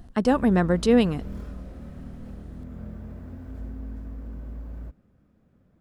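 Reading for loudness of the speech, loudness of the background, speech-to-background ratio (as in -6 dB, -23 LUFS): -22.0 LUFS, -39.5 LUFS, 17.5 dB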